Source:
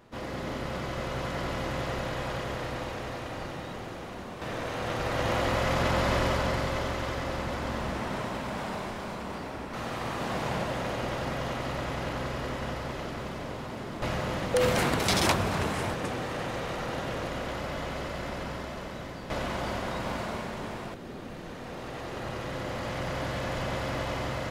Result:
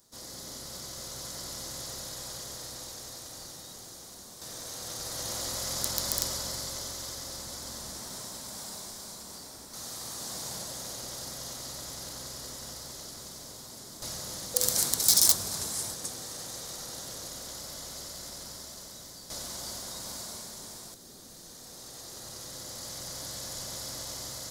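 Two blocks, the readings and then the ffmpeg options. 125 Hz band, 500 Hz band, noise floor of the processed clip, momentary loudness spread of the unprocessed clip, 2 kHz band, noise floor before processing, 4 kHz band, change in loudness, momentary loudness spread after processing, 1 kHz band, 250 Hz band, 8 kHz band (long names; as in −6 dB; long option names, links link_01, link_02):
−14.0 dB, −14.0 dB, −48 dBFS, 12 LU, −14.5 dB, −40 dBFS, +2.0 dB, −1.0 dB, 15 LU, −14.0 dB, −14.0 dB, +12.5 dB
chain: -af "aeval=exprs='(mod(5.62*val(0)+1,2)-1)/5.62':channel_layout=same,aexciter=amount=10.2:drive=8.8:freq=4100,volume=-14dB"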